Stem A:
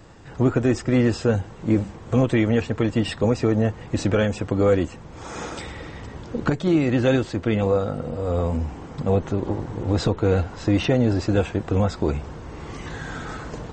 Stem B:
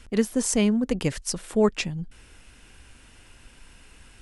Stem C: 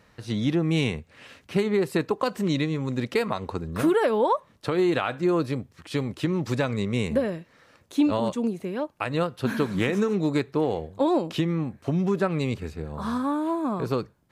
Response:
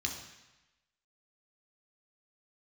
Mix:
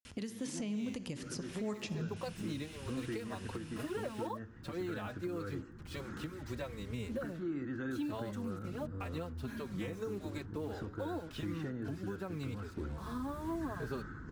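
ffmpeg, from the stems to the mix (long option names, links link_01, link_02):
-filter_complex "[0:a]firequalizer=gain_entry='entry(340,0);entry(590,-21);entry(1500,3);entry(2400,-19)':delay=0.05:min_phase=1,acrossover=split=370|3000[link_01][link_02][link_03];[link_01]acompressor=threshold=-33dB:ratio=6[link_04];[link_04][link_02][link_03]amix=inputs=3:normalize=0,adelay=750,volume=-10.5dB,asplit=2[link_05][link_06];[link_06]volume=-11dB[link_07];[1:a]highpass=90,adelay=50,volume=0dB,asplit=2[link_08][link_09];[link_09]volume=-9dB[link_10];[2:a]acrusher=bits=6:mix=0:aa=0.5,asplit=2[link_11][link_12];[link_12]adelay=4.2,afreqshift=-1.6[link_13];[link_11][link_13]amix=inputs=2:normalize=1,volume=-9dB[link_14];[3:a]atrim=start_sample=2205[link_15];[link_07][link_10]amix=inputs=2:normalize=0[link_16];[link_16][link_15]afir=irnorm=-1:irlink=0[link_17];[link_05][link_08][link_14][link_17]amix=inputs=4:normalize=0,acrossover=split=1300|3900[link_18][link_19][link_20];[link_18]acompressor=threshold=-31dB:ratio=4[link_21];[link_19]acompressor=threshold=-46dB:ratio=4[link_22];[link_20]acompressor=threshold=-47dB:ratio=4[link_23];[link_21][link_22][link_23]amix=inputs=3:normalize=0,alimiter=level_in=5.5dB:limit=-24dB:level=0:latency=1:release=460,volume=-5.5dB"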